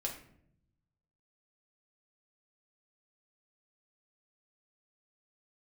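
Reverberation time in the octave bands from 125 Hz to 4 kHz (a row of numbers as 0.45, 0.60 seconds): 1.6, 1.1, 0.80, 0.55, 0.55, 0.40 seconds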